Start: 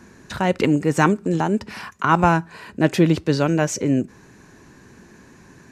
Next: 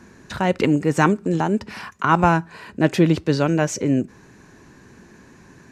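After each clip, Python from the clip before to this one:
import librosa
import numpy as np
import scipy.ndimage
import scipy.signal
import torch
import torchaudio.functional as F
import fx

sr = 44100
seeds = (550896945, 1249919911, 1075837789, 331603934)

y = fx.high_shelf(x, sr, hz=8200.0, db=-4.0)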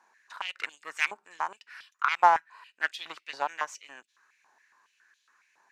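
y = fx.cheby_harmonics(x, sr, harmonics=(3, 5, 7), levels_db=(-15, -34, -28), full_scale_db=-1.5)
y = fx.filter_held_highpass(y, sr, hz=7.2, low_hz=850.0, high_hz=3400.0)
y = y * librosa.db_to_amplitude(-6.5)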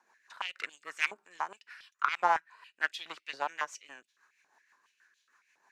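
y = fx.rotary(x, sr, hz=6.3)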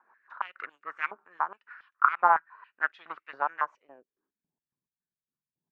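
y = fx.filter_sweep_lowpass(x, sr, from_hz=1300.0, to_hz=150.0, start_s=3.6, end_s=4.56, q=2.8)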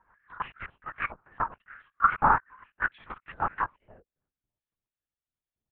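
y = fx.lpc_vocoder(x, sr, seeds[0], excitation='whisper', order=8)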